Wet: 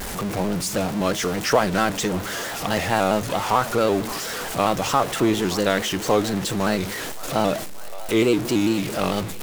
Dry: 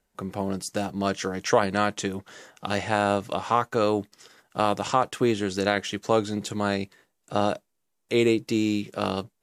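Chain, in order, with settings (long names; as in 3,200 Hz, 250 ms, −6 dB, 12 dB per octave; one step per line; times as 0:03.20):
converter with a step at zero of −25.5 dBFS
echo with a time of its own for lows and highs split 480 Hz, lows 83 ms, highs 571 ms, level −16 dB
pitch modulation by a square or saw wave square 4.5 Hz, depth 100 cents
level +1 dB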